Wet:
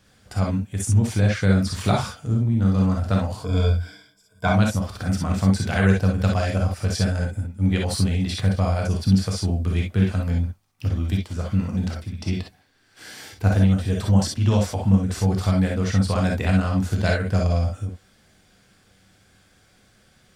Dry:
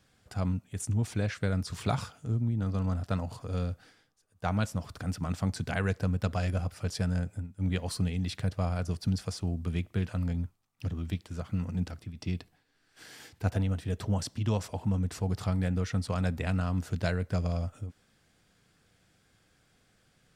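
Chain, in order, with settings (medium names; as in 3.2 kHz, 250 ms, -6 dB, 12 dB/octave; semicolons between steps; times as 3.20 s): 3.40–4.48 s: rippled EQ curve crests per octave 1.7, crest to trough 17 dB; gated-style reverb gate 80 ms rising, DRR 0 dB; trim +6.5 dB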